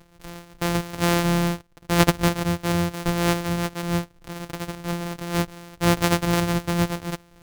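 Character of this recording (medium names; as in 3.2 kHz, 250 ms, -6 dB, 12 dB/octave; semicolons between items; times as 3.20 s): a buzz of ramps at a fixed pitch in blocks of 256 samples; random flutter of the level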